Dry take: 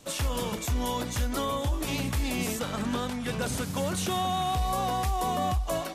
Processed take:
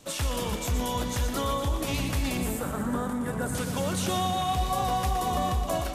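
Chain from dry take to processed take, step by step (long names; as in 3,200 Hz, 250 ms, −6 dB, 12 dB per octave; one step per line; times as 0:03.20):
0:02.37–0:03.55: flat-topped bell 3,700 Hz −14 dB
echo with a time of its own for lows and highs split 1,000 Hz, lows 269 ms, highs 119 ms, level −7 dB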